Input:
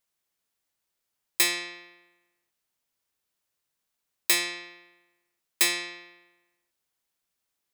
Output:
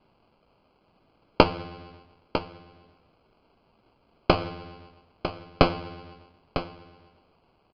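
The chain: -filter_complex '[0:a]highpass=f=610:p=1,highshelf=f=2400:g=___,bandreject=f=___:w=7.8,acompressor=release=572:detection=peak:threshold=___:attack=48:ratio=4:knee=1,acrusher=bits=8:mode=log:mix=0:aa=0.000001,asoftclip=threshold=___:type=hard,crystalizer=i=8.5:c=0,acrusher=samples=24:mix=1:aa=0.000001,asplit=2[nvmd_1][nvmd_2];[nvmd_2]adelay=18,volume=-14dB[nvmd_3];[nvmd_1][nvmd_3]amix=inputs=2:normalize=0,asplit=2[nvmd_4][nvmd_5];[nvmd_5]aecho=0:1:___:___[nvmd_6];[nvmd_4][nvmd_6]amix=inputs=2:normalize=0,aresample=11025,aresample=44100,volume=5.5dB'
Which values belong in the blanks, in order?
-11, 2400, -48dB, -33dB, 951, 0.299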